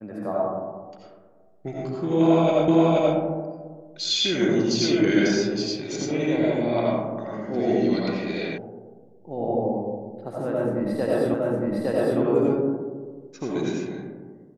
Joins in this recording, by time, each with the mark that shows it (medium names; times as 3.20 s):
2.68 s: repeat of the last 0.48 s
8.58 s: sound stops dead
11.34 s: repeat of the last 0.86 s